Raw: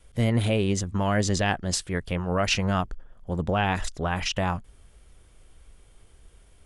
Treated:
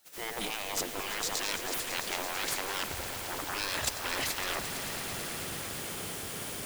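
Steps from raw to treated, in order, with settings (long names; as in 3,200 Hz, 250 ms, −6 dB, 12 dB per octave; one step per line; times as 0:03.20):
fade in at the beginning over 1.69 s
reversed playback
downward compressor 16 to 1, threshold −39 dBFS, peak gain reduction 19.5 dB
reversed playback
sine wavefolder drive 13 dB, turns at −26 dBFS
bit-depth reduction 8 bits, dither triangular
gate on every frequency bin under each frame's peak −15 dB weak
on a send: echo that builds up and dies away 111 ms, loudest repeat 5, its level −13.5 dB
on the sum: level +4 dB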